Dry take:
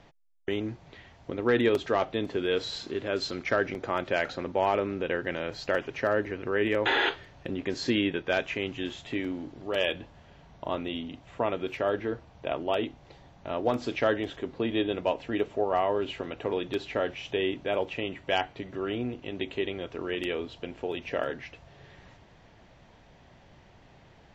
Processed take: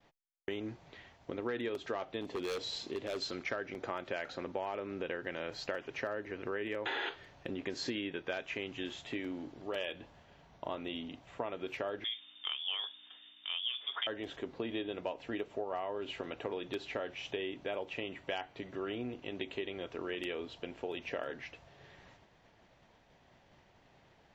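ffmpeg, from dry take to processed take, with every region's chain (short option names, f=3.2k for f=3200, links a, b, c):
-filter_complex "[0:a]asettb=1/sr,asplit=3[a][b][c];[a]atrim=end=2.214[d];[b]atrim=start=2.21:end=3.22,asetpts=PTS-STARTPTS,afade=t=in:d=0.004:c=qsin,afade=t=out:st=1.006:d=0.004:c=qsin,equalizer=f=1.5k:w=3.3:g=-8,aeval=exprs='0.0631*(abs(mod(val(0)/0.0631+3,4)-2)-1)':c=same[e];[c]atrim=start=3.216[f];[d][e]acrossfade=d=0.004:c1=hsin:c2=qsin[g];[g][f]acrossfade=d=0.004:c1=qsin:c2=hsin,asettb=1/sr,asplit=3[h][i][j];[h]atrim=end=12.044[k];[i]atrim=start=12.04:end=14.07,asetpts=PTS-STARTPTS,afade=t=in:d=0.004:c=qsin,afade=t=out:st=2.026:d=0.004:c=qsin,lowpass=f=3.1k:t=q:w=0.5098,lowpass=f=3.1k:t=q:w=0.6013,lowpass=f=3.1k:t=q:w=0.9,lowpass=f=3.1k:t=q:w=2.563,afreqshift=-3700,aeval=exprs='val(0)+0.002*(sin(2*PI*60*n/s)+sin(2*PI*2*60*n/s)/2+sin(2*PI*3*60*n/s)/3+sin(2*PI*4*60*n/s)/4+sin(2*PI*5*60*n/s)/5)':c=same,highpass=f=310:w=0.5412,highpass=f=310:w=1.3066[l];[j]atrim=start=14.066[m];[k][l]acrossfade=d=0.004:c1=hsin:c2=qsin[n];[n][m]acrossfade=d=0.004:c1=qsin:c2=hsin,agate=range=-33dB:threshold=-51dB:ratio=3:detection=peak,lowshelf=f=190:g=-7,acompressor=threshold=-31dB:ratio=6,volume=-3dB"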